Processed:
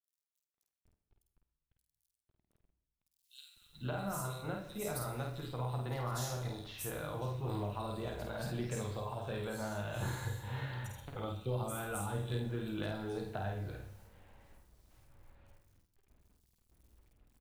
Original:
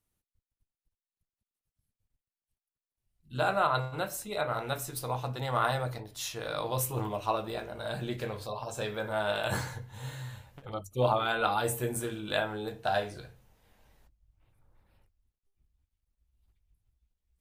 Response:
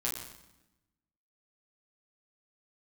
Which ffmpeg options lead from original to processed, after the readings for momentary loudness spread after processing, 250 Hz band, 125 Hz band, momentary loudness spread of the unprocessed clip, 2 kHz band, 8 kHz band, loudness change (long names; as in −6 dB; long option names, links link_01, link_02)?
6 LU, −2.0 dB, −1.0 dB, 13 LU, −10.5 dB, −6.5 dB, −7.0 dB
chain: -filter_complex "[0:a]acrossover=split=230[link_01][link_02];[link_01]asoftclip=type=tanh:threshold=-36.5dB[link_03];[link_02]acompressor=threshold=-42dB:ratio=12[link_04];[link_03][link_04]amix=inputs=2:normalize=0,acrusher=bits=11:mix=0:aa=0.000001,asplit=2[link_05][link_06];[link_06]adelay=50,volume=-4dB[link_07];[link_05][link_07]amix=inputs=2:normalize=0,acrossover=split=3500[link_08][link_09];[link_08]adelay=500[link_10];[link_10][link_09]amix=inputs=2:normalize=0,asplit=2[link_11][link_12];[1:a]atrim=start_sample=2205,adelay=77[link_13];[link_12][link_13]afir=irnorm=-1:irlink=0,volume=-15.5dB[link_14];[link_11][link_14]amix=inputs=2:normalize=0,volume=2dB"